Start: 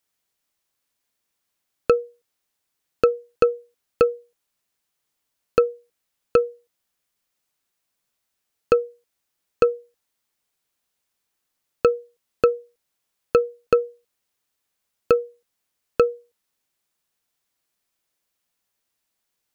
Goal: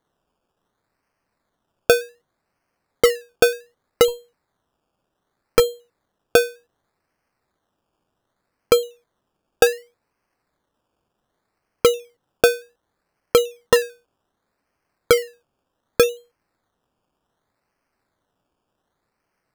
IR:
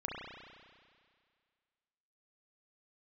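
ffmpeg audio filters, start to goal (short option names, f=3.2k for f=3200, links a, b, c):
-filter_complex "[0:a]acrusher=samples=17:mix=1:aa=0.000001:lfo=1:lforange=10.2:lforate=0.66,asettb=1/sr,asplit=3[a][b][c];[a]atrim=end=4.084[d];[b]atrim=start=4.08:end=5.6,asetpts=PTS-STARTPTS,afade=t=in:d=0.004:c=qsin,afade=t=out:st=1.516:d=0.004:c=qsin,aeval=exprs='0.596*(cos(1*acos(clip(val(0)/0.596,-1,1)))-cos(1*PI/2))+0.0531*(cos(8*acos(clip(val(0)/0.596,-1,1)))-cos(8*PI/2))':c=same[e];[c]atrim=start=5.596[f];[d][e]acrossfade=d=0.004:c1=hsin:c2=qsin[g];[g][f]acrossfade=d=0.004:c1=qsin:c2=hsin,volume=2.5dB"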